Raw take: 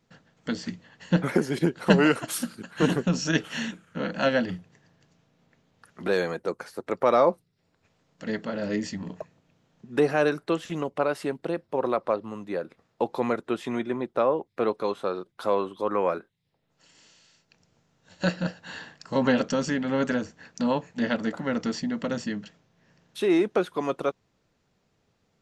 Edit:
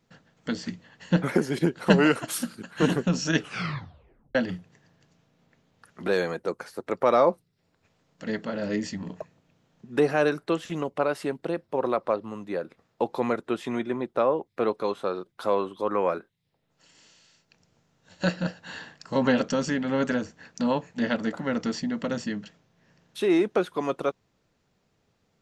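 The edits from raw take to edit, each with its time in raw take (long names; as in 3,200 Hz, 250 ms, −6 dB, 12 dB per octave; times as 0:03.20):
0:03.40: tape stop 0.95 s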